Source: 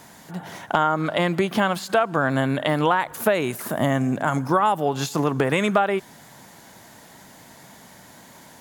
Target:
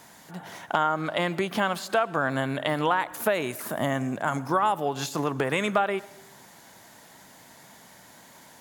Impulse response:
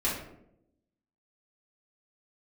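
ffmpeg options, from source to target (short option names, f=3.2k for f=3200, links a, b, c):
-filter_complex "[0:a]lowshelf=f=400:g=-5,asplit=2[a][b];[1:a]atrim=start_sample=2205,adelay=106[c];[b][c]afir=irnorm=-1:irlink=0,volume=-29.5dB[d];[a][d]amix=inputs=2:normalize=0,volume=-3dB"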